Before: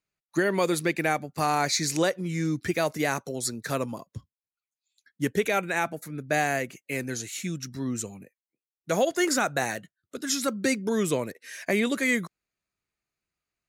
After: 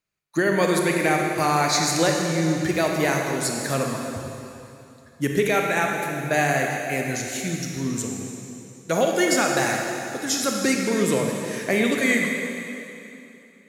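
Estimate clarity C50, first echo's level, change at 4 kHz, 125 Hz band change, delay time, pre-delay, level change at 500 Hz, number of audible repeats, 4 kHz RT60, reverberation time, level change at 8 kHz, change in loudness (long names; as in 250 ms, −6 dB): 1.5 dB, no echo audible, +5.0 dB, +6.0 dB, no echo audible, 27 ms, +5.0 dB, no echo audible, 2.7 s, 2.9 s, +5.0 dB, +5.0 dB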